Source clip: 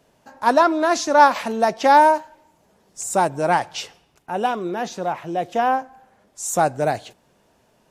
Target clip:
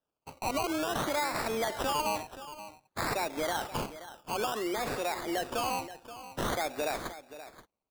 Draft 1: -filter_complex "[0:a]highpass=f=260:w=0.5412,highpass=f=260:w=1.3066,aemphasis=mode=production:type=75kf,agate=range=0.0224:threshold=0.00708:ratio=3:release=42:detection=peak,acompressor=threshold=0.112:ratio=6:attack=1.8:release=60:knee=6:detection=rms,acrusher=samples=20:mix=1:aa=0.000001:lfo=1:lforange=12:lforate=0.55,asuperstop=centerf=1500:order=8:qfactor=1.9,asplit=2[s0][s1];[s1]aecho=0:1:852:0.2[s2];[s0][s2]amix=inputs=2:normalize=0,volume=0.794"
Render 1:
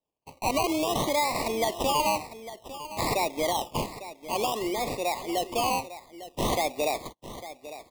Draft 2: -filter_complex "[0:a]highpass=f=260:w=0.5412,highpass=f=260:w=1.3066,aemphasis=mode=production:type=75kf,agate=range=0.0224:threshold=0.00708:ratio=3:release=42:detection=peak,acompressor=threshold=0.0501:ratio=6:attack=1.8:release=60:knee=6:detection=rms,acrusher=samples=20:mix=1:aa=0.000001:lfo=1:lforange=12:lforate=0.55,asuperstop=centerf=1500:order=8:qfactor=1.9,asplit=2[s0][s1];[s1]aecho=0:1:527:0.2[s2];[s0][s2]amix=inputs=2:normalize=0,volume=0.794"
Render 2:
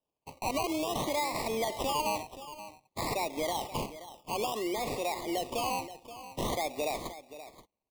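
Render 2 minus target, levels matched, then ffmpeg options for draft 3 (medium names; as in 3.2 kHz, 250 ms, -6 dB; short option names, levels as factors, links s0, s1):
2 kHz band -3.0 dB
-filter_complex "[0:a]highpass=f=260:w=0.5412,highpass=f=260:w=1.3066,aemphasis=mode=production:type=75kf,agate=range=0.0224:threshold=0.00708:ratio=3:release=42:detection=peak,acompressor=threshold=0.0501:ratio=6:attack=1.8:release=60:knee=6:detection=rms,acrusher=samples=20:mix=1:aa=0.000001:lfo=1:lforange=12:lforate=0.55,asplit=2[s0][s1];[s1]aecho=0:1:527:0.2[s2];[s0][s2]amix=inputs=2:normalize=0,volume=0.794"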